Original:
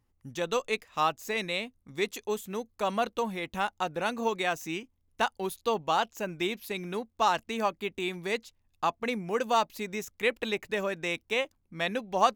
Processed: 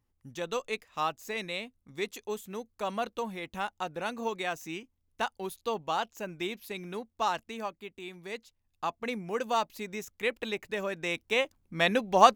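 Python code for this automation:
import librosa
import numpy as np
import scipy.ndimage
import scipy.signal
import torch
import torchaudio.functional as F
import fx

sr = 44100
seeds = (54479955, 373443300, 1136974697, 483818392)

y = fx.gain(x, sr, db=fx.line((7.29, -4.0), (7.95, -11.0), (9.1, -3.0), (10.78, -3.0), (11.83, 5.0)))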